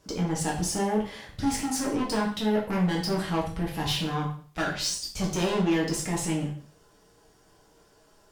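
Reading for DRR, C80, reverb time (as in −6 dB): −3.5 dB, 11.0 dB, 0.45 s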